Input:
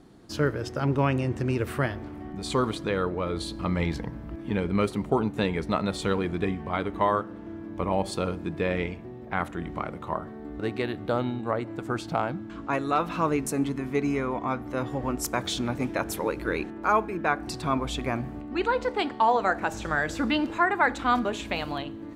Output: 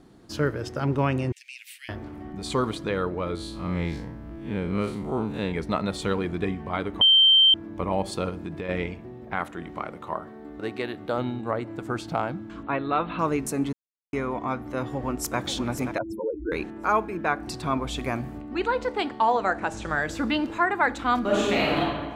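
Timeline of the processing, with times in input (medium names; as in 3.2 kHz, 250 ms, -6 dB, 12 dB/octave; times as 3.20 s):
1.32–1.89 s: steep high-pass 2.2 kHz 48 dB/octave
3.35–5.52 s: spectral blur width 103 ms
7.01–7.54 s: bleep 3.13 kHz -13 dBFS
8.29–8.69 s: compression, threshold -28 dBFS
9.35–11.18 s: bass shelf 160 Hz -10 dB
12.63–13.19 s: steep low-pass 4.1 kHz 72 dB/octave
13.73–14.13 s: mute
14.78–15.38 s: echo throw 530 ms, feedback 20%, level -9.5 dB
15.98–16.52 s: spectral contrast enhancement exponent 3.9
17.96–18.38 s: treble shelf 4.9 kHz +7 dB
19.40–19.89 s: Chebyshev low-pass 10 kHz, order 3
21.21–21.80 s: reverb throw, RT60 1.5 s, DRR -7 dB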